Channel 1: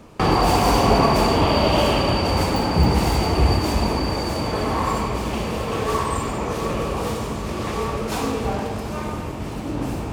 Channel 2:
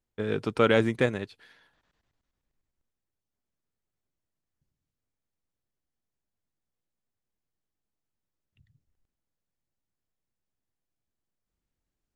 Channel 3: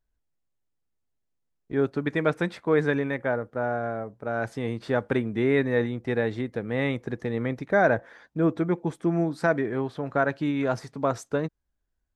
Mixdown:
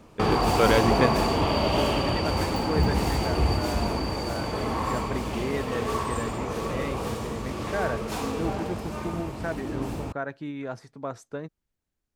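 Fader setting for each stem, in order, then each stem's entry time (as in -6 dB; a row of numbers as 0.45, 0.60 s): -6.0, +0.5, -8.5 dB; 0.00, 0.00, 0.00 s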